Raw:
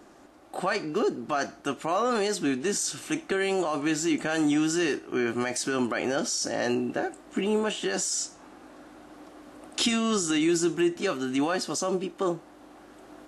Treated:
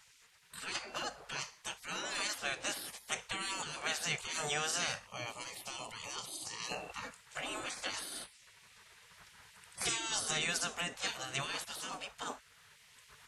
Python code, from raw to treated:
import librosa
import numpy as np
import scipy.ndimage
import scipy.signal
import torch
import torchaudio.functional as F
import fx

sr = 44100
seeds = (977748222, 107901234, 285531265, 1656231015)

y = fx.fixed_phaser(x, sr, hz=310.0, stages=8, at=(5.07, 6.72))
y = fx.spec_gate(y, sr, threshold_db=-20, keep='weak')
y = y * librosa.db_to_amplitude(1.5)